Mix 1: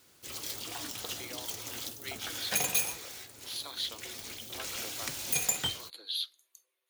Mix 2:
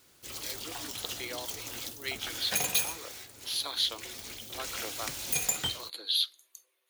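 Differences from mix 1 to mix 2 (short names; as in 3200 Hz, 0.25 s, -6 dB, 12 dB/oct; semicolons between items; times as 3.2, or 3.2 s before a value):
speech +6.5 dB; master: remove HPF 61 Hz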